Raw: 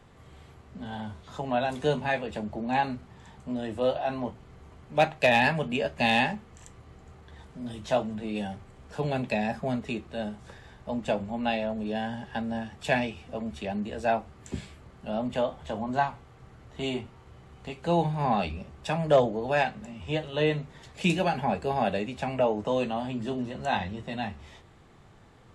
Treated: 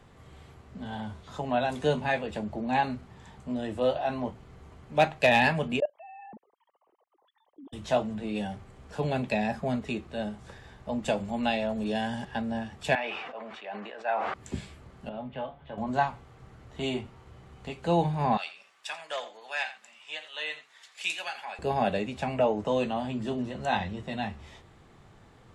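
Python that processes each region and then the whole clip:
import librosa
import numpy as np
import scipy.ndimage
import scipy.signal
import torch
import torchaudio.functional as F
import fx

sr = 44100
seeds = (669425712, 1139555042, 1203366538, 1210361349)

y = fx.chain(x, sr, fx.sine_speech(),
    fx.band_shelf(hz=1900.0, db=-13.0, octaves=1.3),
    fx.level_steps(step_db=23), at=(5.8, 7.73))
y = fx.chain(y, sr, fx.high_shelf(hz=5300.0, db=9.5),
    fx.band_squash(depth_pct=40), at=(11.04, 12.25))
y = fx.chain(y, sr, fx.bandpass_edges(low_hz=800.0, high_hz=2200.0),
    fx.sustainer(db_per_s=33.0), at=(12.95, 14.34))
y = fx.chain(y, sr, fx.lowpass(hz=3400.0, slope=24),
    fx.comb_fb(f0_hz=140.0, decay_s=0.17, harmonics='all', damping=0.0, mix_pct=80), at=(15.09, 15.78))
y = fx.chain(y, sr, fx.highpass(hz=1500.0, slope=12),
    fx.echo_single(ms=85, db=-14.0), at=(18.37, 21.59))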